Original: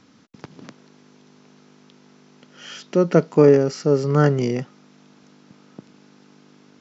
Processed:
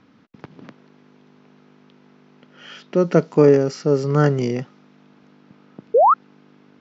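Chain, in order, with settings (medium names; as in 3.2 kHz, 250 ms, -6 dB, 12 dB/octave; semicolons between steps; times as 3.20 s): level-controlled noise filter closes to 2.9 kHz, open at -11 dBFS; painted sound rise, 5.94–6.14 s, 420–1400 Hz -12 dBFS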